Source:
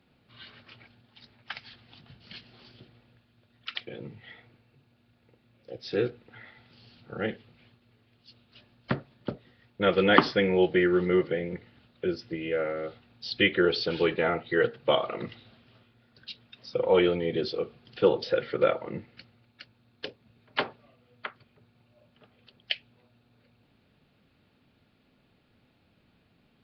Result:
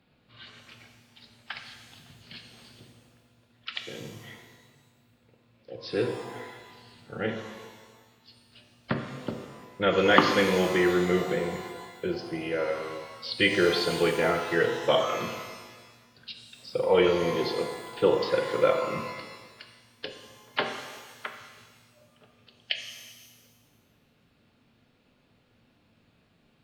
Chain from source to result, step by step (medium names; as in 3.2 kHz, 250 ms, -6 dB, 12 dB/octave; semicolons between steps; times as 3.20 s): de-hum 52.21 Hz, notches 9; pitch-shifted reverb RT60 1.4 s, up +12 st, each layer -8 dB, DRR 4.5 dB